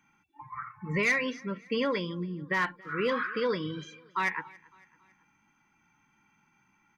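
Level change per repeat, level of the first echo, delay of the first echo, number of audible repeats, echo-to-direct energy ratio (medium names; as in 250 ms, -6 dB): -6.5 dB, -24.0 dB, 278 ms, 2, -23.0 dB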